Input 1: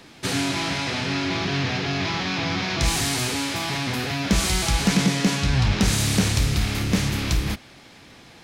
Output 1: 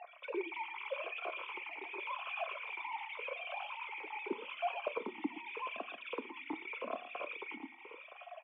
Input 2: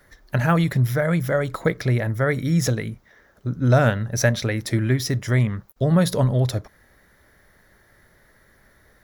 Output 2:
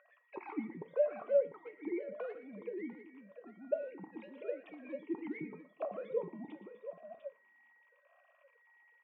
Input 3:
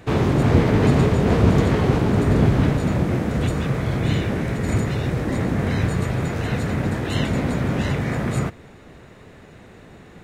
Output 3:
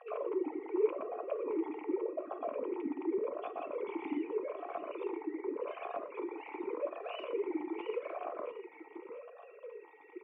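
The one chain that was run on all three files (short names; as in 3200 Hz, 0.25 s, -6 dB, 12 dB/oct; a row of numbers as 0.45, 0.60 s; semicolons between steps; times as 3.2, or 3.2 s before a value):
sine-wave speech; spectral gate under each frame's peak -30 dB strong; dynamic EQ 600 Hz, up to +4 dB, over -28 dBFS, Q 2.4; compressor 3:1, threshold -32 dBFS; whine 1900 Hz -45 dBFS; soft clip -20 dBFS; tapped delay 0.118/0.698 s -14/-10 dB; two-slope reverb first 0.33 s, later 1.9 s, from -21 dB, DRR 10 dB; vowel sweep a-u 0.85 Hz; gain +1.5 dB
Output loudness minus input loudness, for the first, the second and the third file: -19.0, -18.5, -17.5 LU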